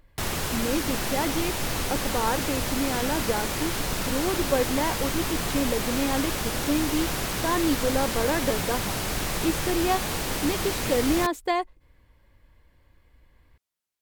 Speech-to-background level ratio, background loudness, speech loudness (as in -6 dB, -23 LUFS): -1.0 dB, -28.0 LUFS, -29.0 LUFS